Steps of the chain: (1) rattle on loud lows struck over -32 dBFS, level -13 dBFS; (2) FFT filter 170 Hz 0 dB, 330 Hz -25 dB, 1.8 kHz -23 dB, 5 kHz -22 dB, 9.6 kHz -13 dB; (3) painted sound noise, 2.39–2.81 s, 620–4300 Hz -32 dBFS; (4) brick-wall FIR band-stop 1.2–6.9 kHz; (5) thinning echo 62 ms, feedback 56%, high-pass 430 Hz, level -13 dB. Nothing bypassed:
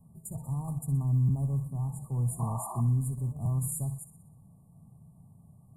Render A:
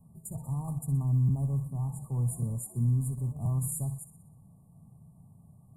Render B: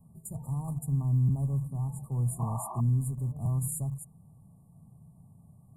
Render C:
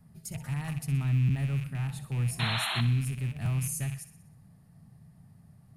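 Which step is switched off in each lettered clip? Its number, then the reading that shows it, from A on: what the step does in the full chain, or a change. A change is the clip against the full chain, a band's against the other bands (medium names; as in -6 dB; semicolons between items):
3, 1 kHz band -7.0 dB; 5, echo-to-direct -12.0 dB to none; 4, crest factor change +2.0 dB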